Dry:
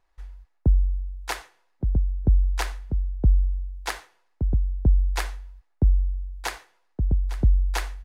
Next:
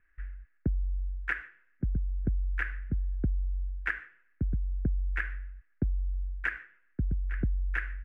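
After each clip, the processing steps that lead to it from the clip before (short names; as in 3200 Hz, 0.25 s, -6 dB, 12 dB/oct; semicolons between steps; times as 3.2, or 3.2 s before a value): EQ curve 260 Hz 0 dB, 910 Hz -20 dB, 1600 Hz +12 dB, 2700 Hz -2 dB, 4100 Hz -28 dB; compressor 6:1, threshold -27 dBFS, peak gain reduction 13 dB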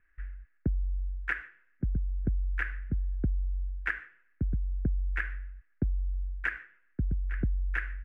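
nothing audible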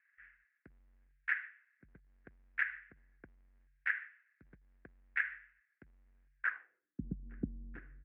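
transient shaper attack -7 dB, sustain -3 dB; band-pass sweep 2000 Hz -> 240 Hz, 6.37–6.93; gain +4 dB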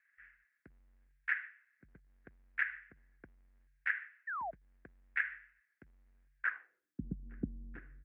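painted sound fall, 4.27–4.51, 620–1900 Hz -39 dBFS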